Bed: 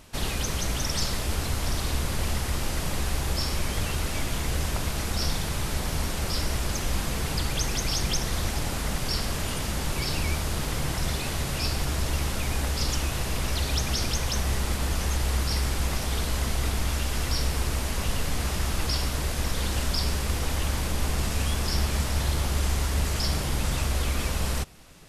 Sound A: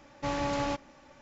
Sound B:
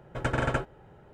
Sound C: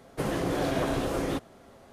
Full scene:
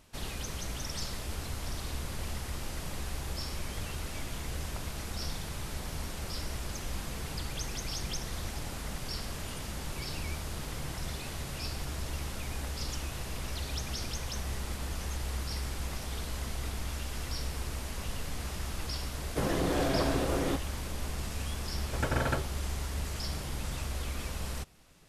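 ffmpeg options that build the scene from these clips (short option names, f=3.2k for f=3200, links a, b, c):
-filter_complex "[0:a]volume=-9.5dB[a];[3:a]atrim=end=1.92,asetpts=PTS-STARTPTS,volume=-1.5dB,afade=t=in:d=0.004:c=hsin,afade=t=out:st=1.916:d=0.004:c=hsin,adelay=19180[b];[2:a]atrim=end=1.13,asetpts=PTS-STARTPTS,volume=-3dB,afade=t=in:d=0.004:c=hsin,afade=t=out:st=1.126:d=0.004:c=hsin,adelay=21780[c];[a][b][c]amix=inputs=3:normalize=0"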